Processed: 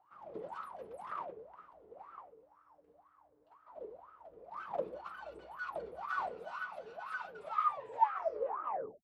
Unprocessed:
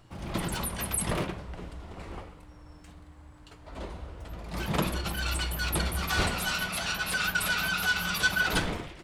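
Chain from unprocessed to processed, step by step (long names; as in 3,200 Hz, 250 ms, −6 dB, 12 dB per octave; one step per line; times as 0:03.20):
turntable brake at the end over 1.69 s
LFO wah 2 Hz 430–1,300 Hz, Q 18
level +7 dB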